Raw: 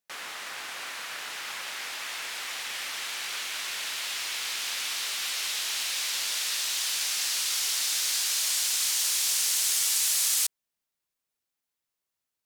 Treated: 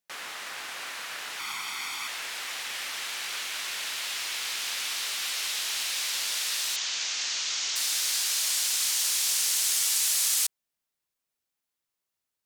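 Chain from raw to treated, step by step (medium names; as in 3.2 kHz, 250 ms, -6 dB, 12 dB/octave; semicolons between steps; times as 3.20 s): 1.39–2.08 s: comb 0.9 ms, depth 71%; 6.76–7.76 s: elliptic low-pass 6.8 kHz, stop band 70 dB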